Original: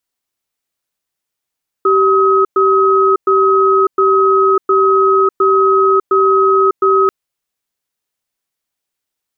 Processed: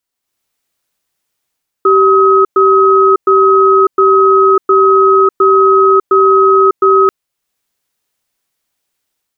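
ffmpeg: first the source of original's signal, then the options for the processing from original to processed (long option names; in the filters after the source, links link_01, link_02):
-f lavfi -i "aevalsrc='0.299*(sin(2*PI*387*t)+sin(2*PI*1270*t))*clip(min(mod(t,0.71),0.6-mod(t,0.71))/0.005,0,1)':duration=5.24:sample_rate=44100"
-af "dynaudnorm=framelen=110:gausssize=5:maxgain=8dB"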